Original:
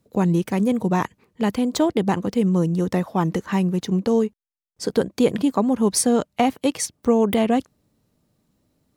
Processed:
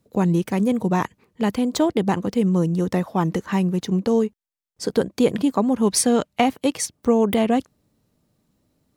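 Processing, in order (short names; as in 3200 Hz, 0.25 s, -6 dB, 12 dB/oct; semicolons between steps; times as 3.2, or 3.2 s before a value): 5.73–6.44 dynamic EQ 2600 Hz, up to +5 dB, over -37 dBFS, Q 0.86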